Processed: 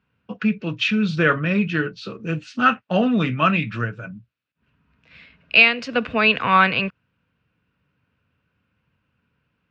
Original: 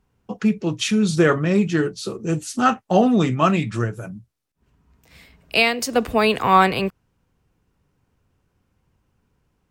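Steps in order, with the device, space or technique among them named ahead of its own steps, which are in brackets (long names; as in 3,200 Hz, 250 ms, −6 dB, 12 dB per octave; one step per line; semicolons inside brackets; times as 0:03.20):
guitar cabinet (loudspeaker in its box 98–4,200 Hz, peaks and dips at 370 Hz −9 dB, 790 Hz −8 dB, 1,500 Hz +7 dB, 2,600 Hz +9 dB)
level −1 dB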